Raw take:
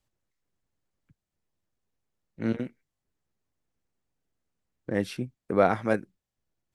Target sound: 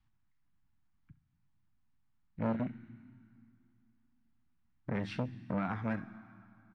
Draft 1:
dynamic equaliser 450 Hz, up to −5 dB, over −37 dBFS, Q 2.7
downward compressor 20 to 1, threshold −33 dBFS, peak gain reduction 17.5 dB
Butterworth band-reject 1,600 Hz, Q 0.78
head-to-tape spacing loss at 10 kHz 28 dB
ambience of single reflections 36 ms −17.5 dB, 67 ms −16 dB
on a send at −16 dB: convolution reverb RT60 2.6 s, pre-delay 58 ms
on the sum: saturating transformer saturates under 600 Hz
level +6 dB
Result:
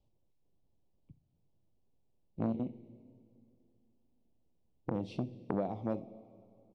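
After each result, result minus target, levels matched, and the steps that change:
2,000 Hz band −12.0 dB; downward compressor: peak gain reduction +5.5 dB
change: Butterworth band-reject 480 Hz, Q 0.78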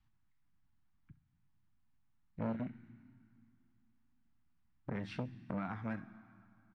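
downward compressor: peak gain reduction +5.5 dB
change: downward compressor 20 to 1, threshold −27 dBFS, peak gain reduction 12 dB

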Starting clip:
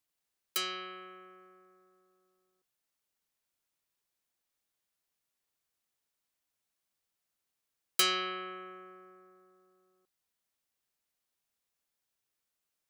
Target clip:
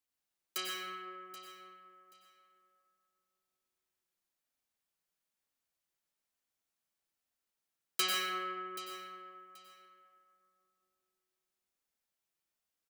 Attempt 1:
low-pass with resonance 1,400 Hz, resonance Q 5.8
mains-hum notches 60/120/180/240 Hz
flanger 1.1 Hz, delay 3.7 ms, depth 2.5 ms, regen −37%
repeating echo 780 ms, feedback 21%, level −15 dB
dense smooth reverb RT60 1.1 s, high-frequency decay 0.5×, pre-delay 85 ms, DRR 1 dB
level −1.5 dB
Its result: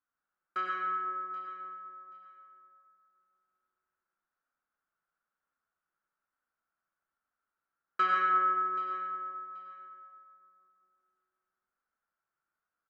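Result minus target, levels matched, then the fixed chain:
1,000 Hz band +7.0 dB
mains-hum notches 60/120/180/240 Hz
flanger 1.1 Hz, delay 3.7 ms, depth 2.5 ms, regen −37%
repeating echo 780 ms, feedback 21%, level −15 dB
dense smooth reverb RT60 1.1 s, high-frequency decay 0.5×, pre-delay 85 ms, DRR 1 dB
level −1.5 dB

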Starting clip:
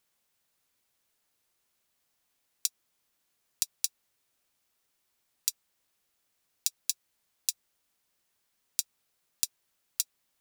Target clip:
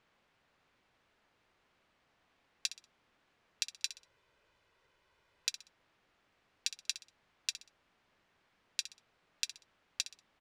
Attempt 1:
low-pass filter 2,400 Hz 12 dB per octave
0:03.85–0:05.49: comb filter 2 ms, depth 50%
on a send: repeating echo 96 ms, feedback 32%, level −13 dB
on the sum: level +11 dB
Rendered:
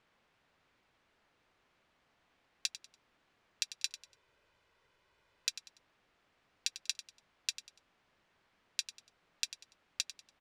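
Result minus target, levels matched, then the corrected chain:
echo 33 ms late
low-pass filter 2,400 Hz 12 dB per octave
0:03.85–0:05.49: comb filter 2 ms, depth 50%
on a send: repeating echo 63 ms, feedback 32%, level −13 dB
on the sum: level +11 dB

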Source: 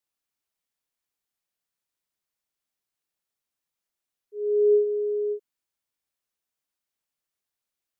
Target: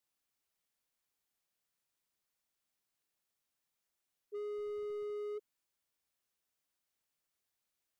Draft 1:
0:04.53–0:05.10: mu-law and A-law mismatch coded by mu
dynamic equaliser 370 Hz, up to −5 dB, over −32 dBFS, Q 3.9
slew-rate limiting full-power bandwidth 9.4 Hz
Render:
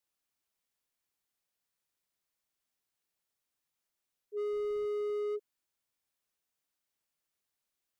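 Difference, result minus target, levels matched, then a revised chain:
slew-rate limiting: distortion −7 dB
0:04.53–0:05.10: mu-law and A-law mismatch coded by mu
dynamic equaliser 370 Hz, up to −5 dB, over −32 dBFS, Q 3.9
slew-rate limiting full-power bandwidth 4.5 Hz

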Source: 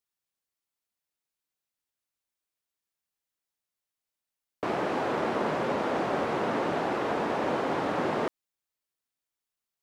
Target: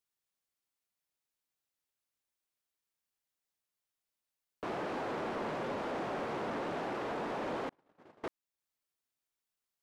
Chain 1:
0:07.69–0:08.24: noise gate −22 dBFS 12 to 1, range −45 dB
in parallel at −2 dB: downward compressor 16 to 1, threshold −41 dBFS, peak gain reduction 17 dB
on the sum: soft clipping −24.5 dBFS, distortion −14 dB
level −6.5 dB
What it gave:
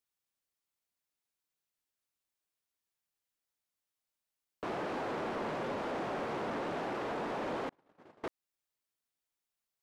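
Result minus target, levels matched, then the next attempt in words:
downward compressor: peak gain reduction −8.5 dB
0:07.69–0:08.24: noise gate −22 dBFS 12 to 1, range −45 dB
in parallel at −2 dB: downward compressor 16 to 1, threshold −50 dBFS, peak gain reduction 25.5 dB
on the sum: soft clipping −24.5 dBFS, distortion −15 dB
level −6.5 dB

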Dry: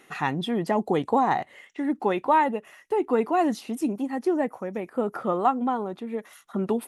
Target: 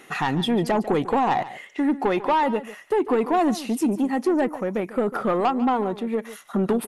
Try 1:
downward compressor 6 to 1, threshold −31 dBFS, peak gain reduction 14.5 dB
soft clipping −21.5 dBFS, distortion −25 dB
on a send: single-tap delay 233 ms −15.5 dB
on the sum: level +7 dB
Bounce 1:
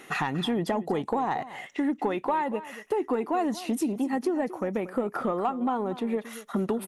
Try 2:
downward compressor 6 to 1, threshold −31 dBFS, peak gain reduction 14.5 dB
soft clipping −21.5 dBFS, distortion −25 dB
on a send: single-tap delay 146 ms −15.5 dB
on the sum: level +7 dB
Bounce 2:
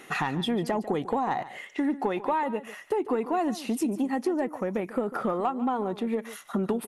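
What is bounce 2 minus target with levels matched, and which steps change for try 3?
downward compressor: peak gain reduction +9 dB
change: downward compressor 6 to 1, threshold −20.5 dBFS, peak gain reduction 5.5 dB

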